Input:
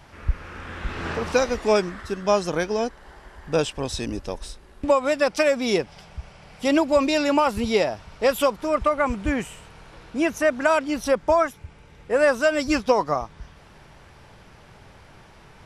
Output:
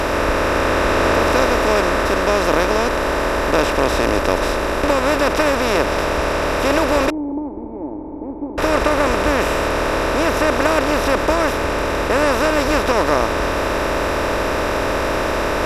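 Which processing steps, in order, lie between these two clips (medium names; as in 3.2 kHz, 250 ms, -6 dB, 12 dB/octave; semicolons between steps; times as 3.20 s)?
spectral levelling over time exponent 0.2; 7.10–8.58 s: cascade formant filter u; trim -5 dB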